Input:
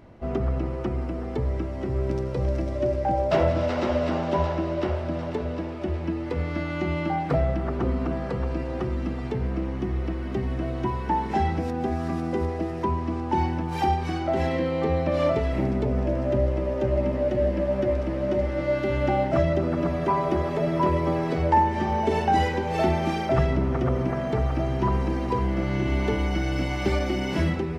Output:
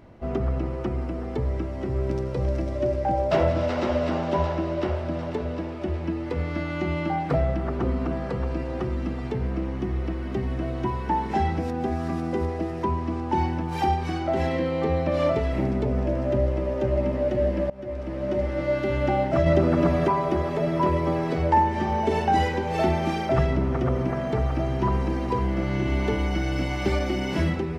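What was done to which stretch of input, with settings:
17.7–18.68 fade in equal-power, from -22.5 dB
19.46–20.08 gain +4.5 dB

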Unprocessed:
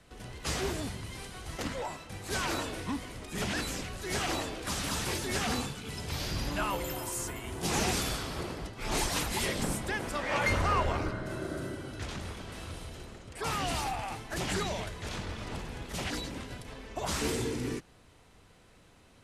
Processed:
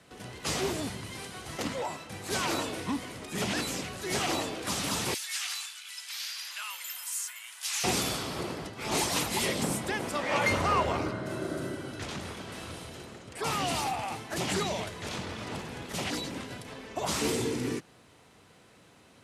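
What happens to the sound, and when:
5.14–7.84 Bessel high-pass 2100 Hz, order 4
whole clip: HPF 120 Hz 12 dB/oct; dynamic EQ 1600 Hz, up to -4 dB, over -48 dBFS, Q 3; gain +3 dB

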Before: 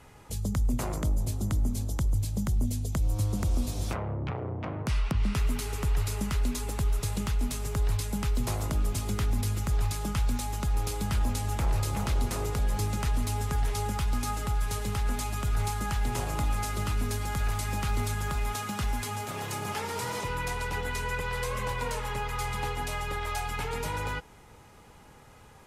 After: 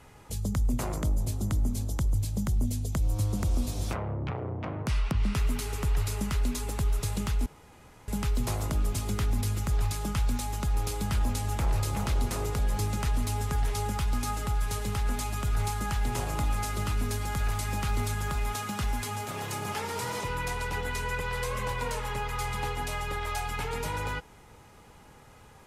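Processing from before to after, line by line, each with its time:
7.46–8.08 room tone

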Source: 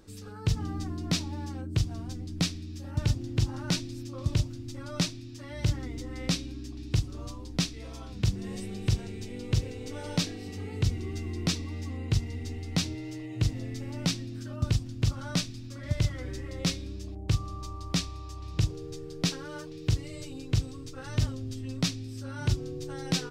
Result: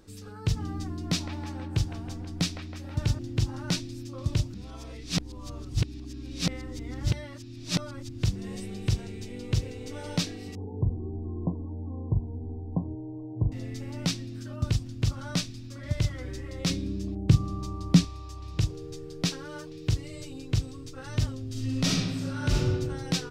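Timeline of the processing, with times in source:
0.94–3.19 band-limited delay 0.161 s, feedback 63%, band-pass 1100 Hz, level -4.5 dB
4.54–8.23 reverse
10.55–13.52 brick-wall FIR low-pass 1100 Hz
16.7–18.05 bell 200 Hz +13 dB 1.7 oct
21.49–22.67 reverb throw, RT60 1.4 s, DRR -4.5 dB

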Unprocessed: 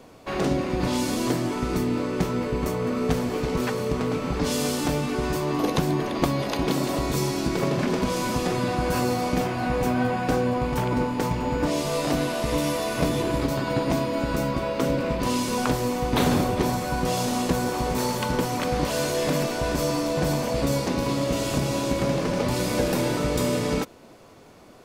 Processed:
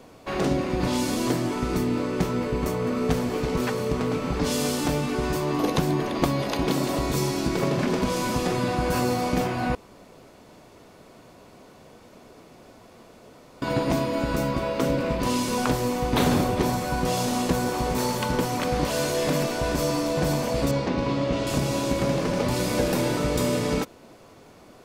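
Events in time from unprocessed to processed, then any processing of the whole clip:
9.75–13.62 room tone
20.71–21.47 LPF 3800 Hz

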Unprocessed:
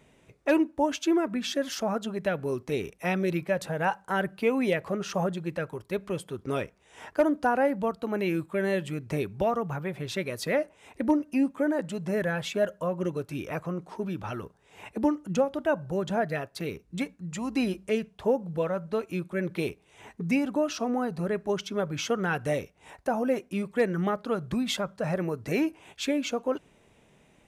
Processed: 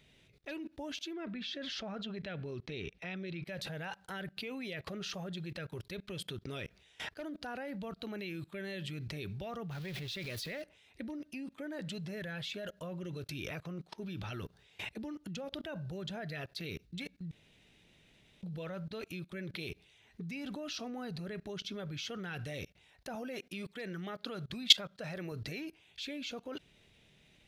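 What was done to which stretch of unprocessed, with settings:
1.13–3.45 LPF 3800 Hz
9.71–10.62 zero-crossing step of -37 dBFS
17.31–18.43 room tone
23.15–25.32 low shelf 150 Hz -10.5 dB
whole clip: graphic EQ 250/500/1000/4000/8000 Hz -5/-5/-10/+10/-7 dB; level quantiser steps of 24 dB; gain +7 dB

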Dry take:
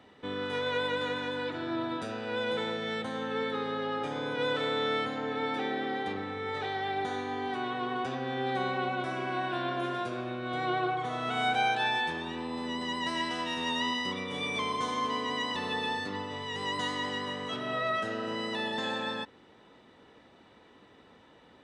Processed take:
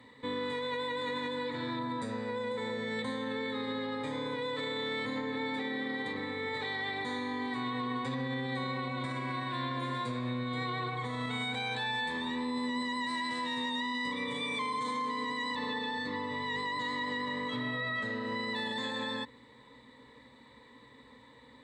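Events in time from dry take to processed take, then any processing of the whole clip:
1.79–2.99 bell 3200 Hz -7.5 dB 1.1 oct
15.55–18.56 air absorption 83 m
whole clip: ripple EQ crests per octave 1, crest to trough 14 dB; limiter -25 dBFS; bell 570 Hz -5 dB 1.4 oct

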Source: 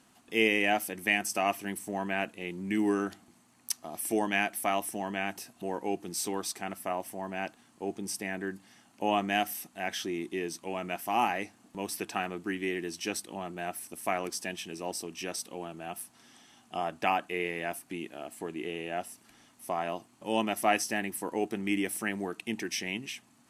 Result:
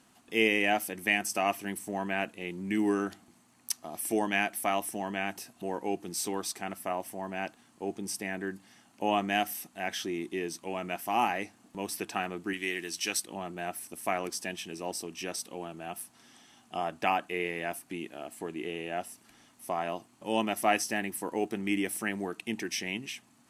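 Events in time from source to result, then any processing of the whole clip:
12.53–13.24 tilt shelf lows -6 dB, about 1100 Hz
20.42–21.57 short-mantissa float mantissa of 6-bit

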